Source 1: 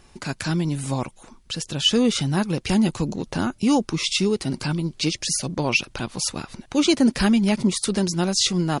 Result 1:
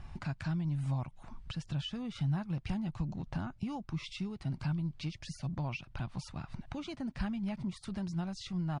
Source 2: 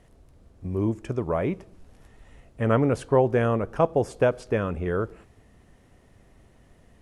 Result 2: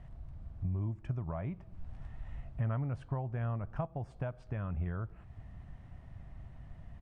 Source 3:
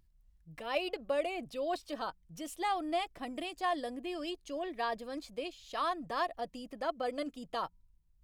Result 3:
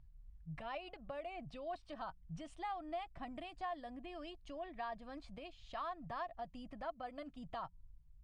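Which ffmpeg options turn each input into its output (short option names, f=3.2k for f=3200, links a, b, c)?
-af "acompressor=threshold=-43dB:ratio=2.5,firequalizer=gain_entry='entry(140,0);entry(220,-10);entry(460,-21);entry(650,-8);entry(6800,-24)':delay=0.05:min_phase=1,volume=9dB" -ar 22050 -c:a libmp3lame -b:a 96k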